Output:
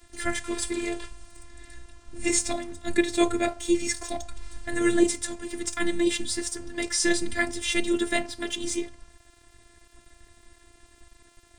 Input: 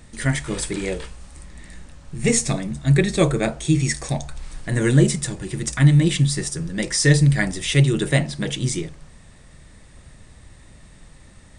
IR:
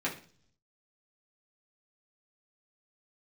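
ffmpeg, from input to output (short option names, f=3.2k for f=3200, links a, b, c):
-af "afftfilt=real='hypot(re,im)*cos(PI*b)':imag='0':win_size=512:overlap=0.75,aeval=exprs='sgn(val(0))*max(abs(val(0))-0.00299,0)':c=same"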